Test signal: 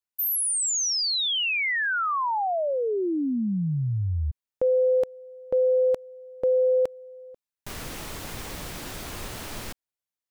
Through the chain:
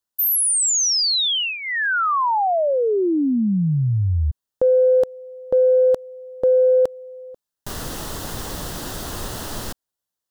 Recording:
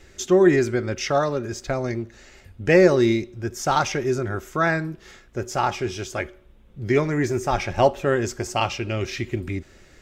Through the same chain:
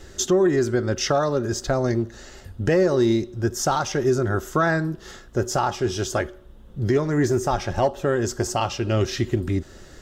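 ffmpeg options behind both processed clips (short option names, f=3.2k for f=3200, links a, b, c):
-filter_complex "[0:a]equalizer=f=2.3k:t=o:w=0.35:g=-14,asplit=2[a][b];[b]acontrast=45,volume=0dB[c];[a][c]amix=inputs=2:normalize=0,alimiter=limit=-9dB:level=0:latency=1:release=466,volume=-2.5dB"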